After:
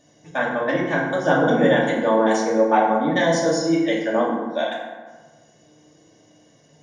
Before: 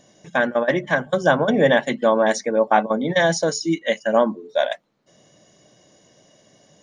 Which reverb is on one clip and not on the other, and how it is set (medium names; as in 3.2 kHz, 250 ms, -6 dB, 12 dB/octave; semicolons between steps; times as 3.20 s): FDN reverb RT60 1.4 s, low-frequency decay 1.2×, high-frequency decay 0.5×, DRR -4.5 dB; trim -6.5 dB